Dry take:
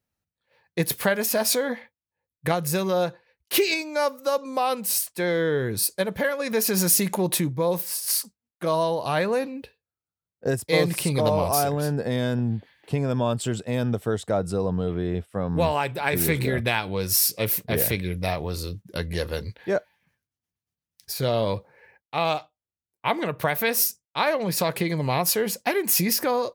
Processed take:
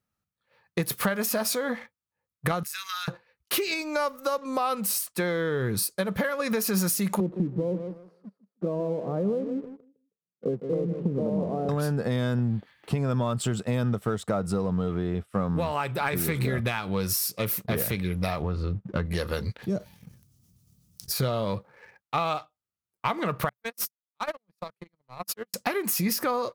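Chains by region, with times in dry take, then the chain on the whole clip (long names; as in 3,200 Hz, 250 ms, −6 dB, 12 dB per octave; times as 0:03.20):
0:02.63–0:03.08: inverse Chebyshev high-pass filter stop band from 600 Hz, stop band 50 dB + downward compressor 4 to 1, threshold −34 dBFS
0:07.20–0:11.69: Chebyshev band-pass filter 180–460 Hz + repeating echo 159 ms, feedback 23%, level −12.5 dB
0:18.42–0:19.06: one scale factor per block 7 bits + low-pass filter 2,100 Hz + low-shelf EQ 190 Hz +6 dB
0:19.62–0:21.11: drawn EQ curve 160 Hz 0 dB, 1,600 Hz −26 dB, 5,600 Hz −7 dB + envelope flattener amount 50%
0:23.49–0:25.54: noise gate −20 dBFS, range −57 dB + gain into a clipping stage and back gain 28.5 dB
whole clip: downward compressor 6 to 1, threshold −29 dBFS; thirty-one-band graphic EQ 125 Hz +4 dB, 200 Hz +6 dB, 1,250 Hz +10 dB; leveller curve on the samples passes 1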